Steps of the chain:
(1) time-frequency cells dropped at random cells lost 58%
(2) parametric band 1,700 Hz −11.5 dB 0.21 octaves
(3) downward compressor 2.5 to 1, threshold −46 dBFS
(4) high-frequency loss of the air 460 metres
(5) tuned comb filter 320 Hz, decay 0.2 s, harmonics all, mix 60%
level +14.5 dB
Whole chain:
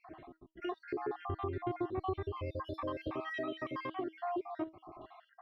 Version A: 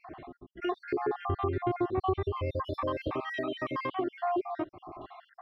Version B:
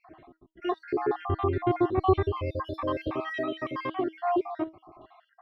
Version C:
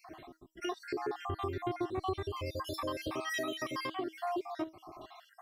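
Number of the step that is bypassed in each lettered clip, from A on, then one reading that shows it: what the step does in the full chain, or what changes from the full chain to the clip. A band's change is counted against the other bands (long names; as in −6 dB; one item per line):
5, change in integrated loudness +6.5 LU
3, average gain reduction 7.5 dB
4, 4 kHz band +9.0 dB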